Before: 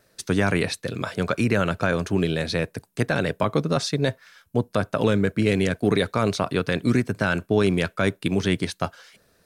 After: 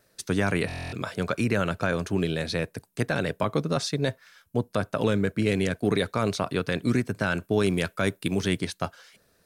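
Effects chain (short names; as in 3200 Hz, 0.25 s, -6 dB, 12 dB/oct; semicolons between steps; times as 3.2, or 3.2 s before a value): high shelf 8100 Hz +3.5 dB, from 7.43 s +10.5 dB, from 8.58 s +3 dB; stuck buffer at 0.67, samples 1024, times 10; gain -3.5 dB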